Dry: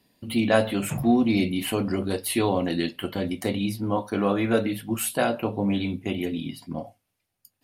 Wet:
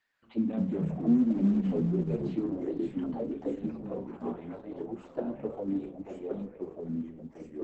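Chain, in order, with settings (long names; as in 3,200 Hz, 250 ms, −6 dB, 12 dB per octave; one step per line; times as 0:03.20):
one-sided soft clipper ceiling −18.5 dBFS
0:00.95–0:01.53: Butterworth high-pass 190 Hz 36 dB per octave
0:03.93–0:04.63: downward compressor 6 to 1, threshold −30 dBFS, peak gain reduction 10.5 dB
0:06.41–0:06.82: gate with flip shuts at −30 dBFS, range −37 dB
envelope filter 240–1,700 Hz, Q 4.2, down, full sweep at −20.5 dBFS
on a send: feedback echo with a high-pass in the loop 470 ms, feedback 35%, high-pass 420 Hz, level −17 dB
on the sum: delay with pitch and tempo change per echo 139 ms, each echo −3 semitones, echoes 2
Opus 10 kbit/s 48,000 Hz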